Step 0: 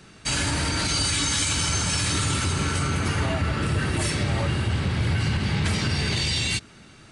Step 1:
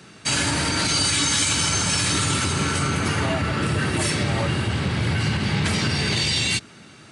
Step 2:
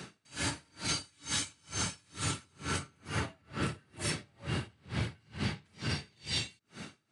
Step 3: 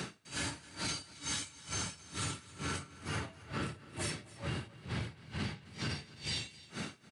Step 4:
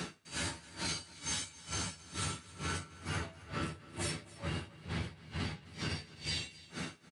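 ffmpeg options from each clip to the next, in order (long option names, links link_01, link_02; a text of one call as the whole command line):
ffmpeg -i in.wav -af "highpass=110,volume=3.5dB" out.wav
ffmpeg -i in.wav -af "acompressor=threshold=-31dB:ratio=6,aeval=exprs='val(0)*pow(10,-37*(0.5-0.5*cos(2*PI*2.2*n/s))/20)':channel_layout=same,volume=2.5dB" out.wav
ffmpeg -i in.wav -af "acompressor=threshold=-42dB:ratio=6,aecho=1:1:268:0.112,volume=6.5dB" out.wav
ffmpeg -i in.wav -filter_complex "[0:a]asplit=2[link_01][link_02];[link_02]adelay=12,volume=-5dB[link_03];[link_01][link_03]amix=inputs=2:normalize=0,volume=-1dB" out.wav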